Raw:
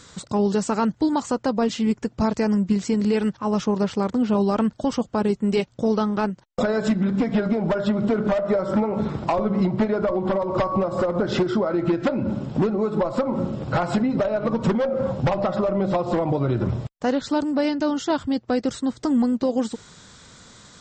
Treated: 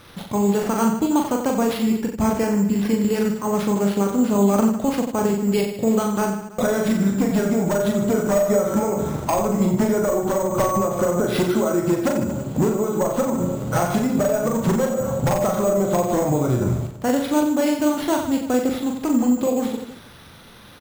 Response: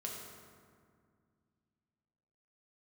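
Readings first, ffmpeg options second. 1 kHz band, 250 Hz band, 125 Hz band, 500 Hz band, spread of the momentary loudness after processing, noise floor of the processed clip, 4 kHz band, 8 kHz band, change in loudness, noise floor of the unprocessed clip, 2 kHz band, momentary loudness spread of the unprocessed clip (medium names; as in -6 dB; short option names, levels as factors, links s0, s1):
+2.0 dB, +2.0 dB, +2.0 dB, +2.5 dB, 4 LU, -41 dBFS, +1.0 dB, no reading, +2.0 dB, -52 dBFS, +2.0 dB, 3 LU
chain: -af "acrusher=samples=6:mix=1:aa=0.000001,aecho=1:1:40|90|152.5|230.6|328.3:0.631|0.398|0.251|0.158|0.1"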